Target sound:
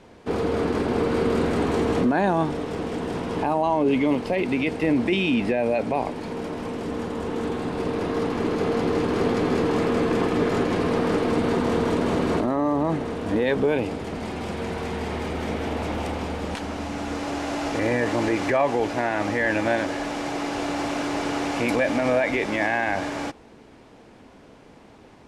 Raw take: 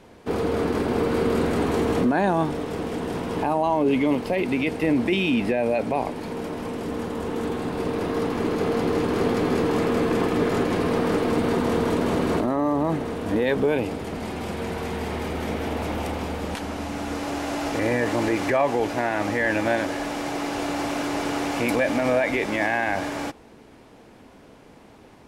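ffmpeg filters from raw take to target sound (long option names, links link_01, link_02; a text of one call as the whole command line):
ffmpeg -i in.wav -af "lowpass=8800" out.wav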